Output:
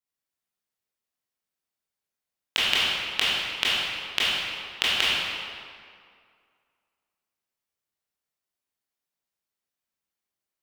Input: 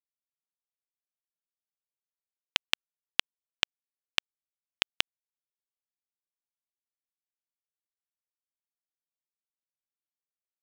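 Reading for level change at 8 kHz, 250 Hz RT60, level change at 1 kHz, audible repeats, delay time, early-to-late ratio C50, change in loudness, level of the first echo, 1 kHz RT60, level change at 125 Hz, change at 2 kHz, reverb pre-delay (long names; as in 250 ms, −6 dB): +7.0 dB, 2.1 s, +9.5 dB, no echo audible, no echo audible, −4.0 dB, +7.0 dB, no echo audible, 2.2 s, +9.5 dB, +8.5 dB, 18 ms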